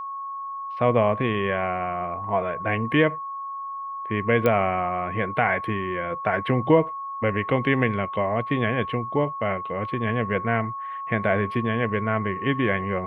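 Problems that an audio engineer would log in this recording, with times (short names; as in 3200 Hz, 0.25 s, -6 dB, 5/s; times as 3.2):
tone 1100 Hz -30 dBFS
4.46 pop -10 dBFS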